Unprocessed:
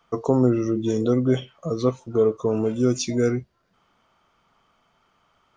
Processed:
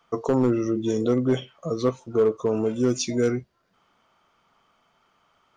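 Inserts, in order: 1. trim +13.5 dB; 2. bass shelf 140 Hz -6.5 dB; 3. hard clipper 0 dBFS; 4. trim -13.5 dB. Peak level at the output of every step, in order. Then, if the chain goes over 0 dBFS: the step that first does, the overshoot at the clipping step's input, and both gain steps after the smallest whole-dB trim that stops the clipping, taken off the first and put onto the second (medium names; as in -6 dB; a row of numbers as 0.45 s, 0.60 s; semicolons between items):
+7.0 dBFS, +6.0 dBFS, 0.0 dBFS, -13.5 dBFS; step 1, 6.0 dB; step 1 +7.5 dB, step 4 -7.5 dB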